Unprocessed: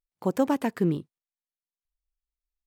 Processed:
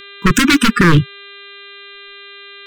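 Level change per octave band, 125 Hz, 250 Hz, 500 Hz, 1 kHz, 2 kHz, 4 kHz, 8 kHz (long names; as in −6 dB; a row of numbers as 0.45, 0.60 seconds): +17.5 dB, +13.0 dB, +6.0 dB, +14.5 dB, +26.5 dB, +29.5 dB, can't be measured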